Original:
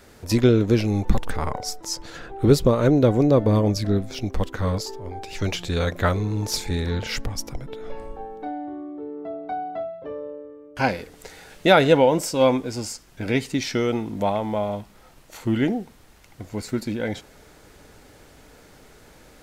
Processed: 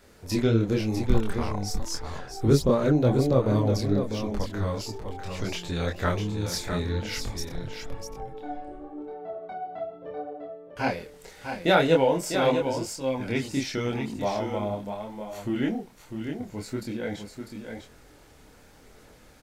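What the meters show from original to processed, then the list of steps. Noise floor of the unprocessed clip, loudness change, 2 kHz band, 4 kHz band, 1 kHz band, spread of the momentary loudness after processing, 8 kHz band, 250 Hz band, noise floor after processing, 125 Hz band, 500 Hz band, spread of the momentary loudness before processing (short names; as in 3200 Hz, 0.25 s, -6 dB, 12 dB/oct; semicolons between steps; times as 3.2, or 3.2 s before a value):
-51 dBFS, -4.5 dB, -4.0 dB, -4.0 dB, -4.0 dB, 17 LU, -4.0 dB, -4.0 dB, -53 dBFS, -3.5 dB, -4.5 dB, 17 LU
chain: on a send: echo 0.649 s -7 dB; on the sum: chorus voices 2, 0.92 Hz, delay 26 ms, depth 3.5 ms; gain -2 dB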